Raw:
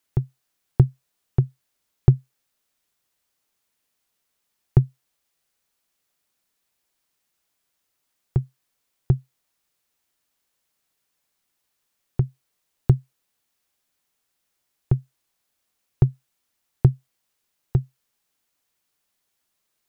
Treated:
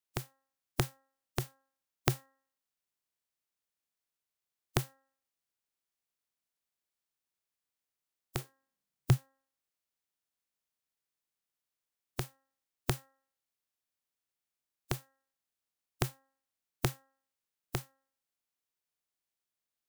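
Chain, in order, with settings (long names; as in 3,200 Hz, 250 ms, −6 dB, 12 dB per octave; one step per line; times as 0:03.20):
compressing power law on the bin magnitudes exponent 0.37
0:08.38–0:09.16: parametric band 410 Hz → 110 Hz +14 dB 1.1 octaves
hum removal 268.9 Hz, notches 7
level −15 dB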